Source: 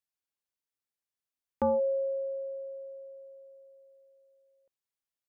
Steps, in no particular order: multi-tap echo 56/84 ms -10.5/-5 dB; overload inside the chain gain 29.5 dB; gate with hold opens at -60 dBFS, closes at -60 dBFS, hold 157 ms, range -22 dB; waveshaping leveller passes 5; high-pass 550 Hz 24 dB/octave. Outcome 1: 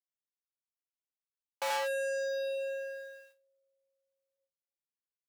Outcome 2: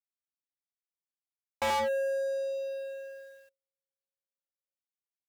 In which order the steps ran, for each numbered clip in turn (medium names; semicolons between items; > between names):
gate with hold > multi-tap echo > waveshaping leveller > overload inside the chain > high-pass; multi-tap echo > overload inside the chain > high-pass > gate with hold > waveshaping leveller